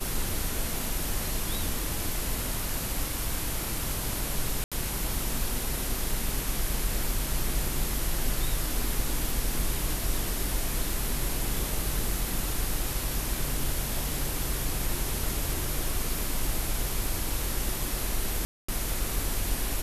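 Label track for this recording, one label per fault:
4.640000	4.720000	dropout 76 ms
18.450000	18.680000	dropout 235 ms

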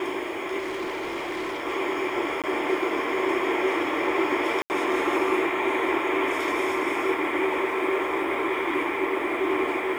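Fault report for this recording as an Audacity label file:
0.580000	1.610000	clipped -27 dBFS
2.420000	2.440000	dropout 17 ms
4.620000	4.700000	dropout 79 ms

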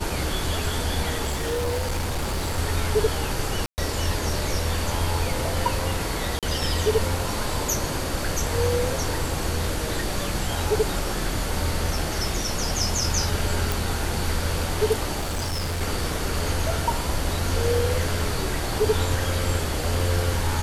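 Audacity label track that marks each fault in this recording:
1.250000	2.590000	clipped -22 dBFS
3.660000	3.780000	dropout 119 ms
6.390000	6.430000	dropout 37 ms
13.720000	13.720000	pop
15.200000	15.820000	clipped -23.5 dBFS

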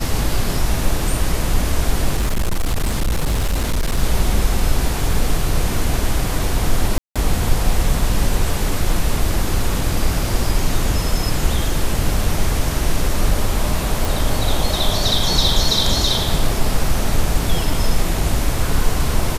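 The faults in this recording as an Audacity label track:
2.170000	3.990000	clipped -14 dBFS
6.980000	7.160000	dropout 176 ms
14.050000	14.050000	pop

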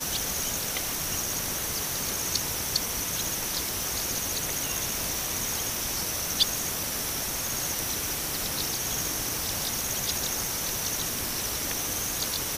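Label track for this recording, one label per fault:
3.830000	3.830000	pop

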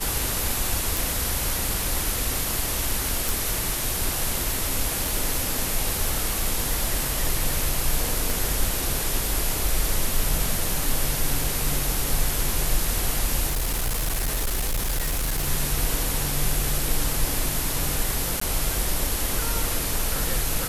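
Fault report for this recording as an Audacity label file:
0.970000	0.970000	pop
3.290000	3.290000	pop
8.300000	8.300000	pop
11.440000	11.440000	dropout 2.2 ms
13.460000	15.490000	clipped -21 dBFS
18.400000	18.410000	dropout 14 ms

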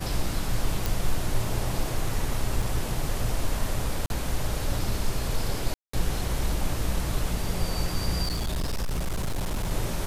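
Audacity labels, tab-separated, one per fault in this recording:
0.860000	0.860000	pop
2.620000	2.620000	dropout 4.7 ms
4.060000	4.100000	dropout 41 ms
5.740000	5.930000	dropout 194 ms
8.230000	9.720000	clipped -24 dBFS

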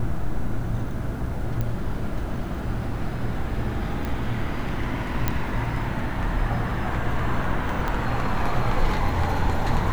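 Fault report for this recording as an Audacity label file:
1.610000	1.610000	pop -15 dBFS
4.050000	4.050000	pop
5.280000	5.280000	pop -8 dBFS
7.880000	7.880000	pop -14 dBFS

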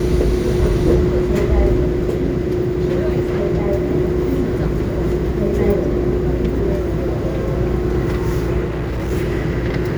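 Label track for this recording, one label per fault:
8.640000	9.120000	clipped -18.5 dBFS

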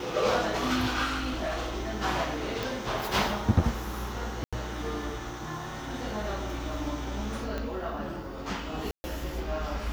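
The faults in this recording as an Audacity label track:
1.040000	1.740000	clipped -27 dBFS
2.630000	2.630000	pop
4.440000	4.530000	dropout 86 ms
7.580000	7.580000	pop -20 dBFS
8.910000	9.040000	dropout 130 ms

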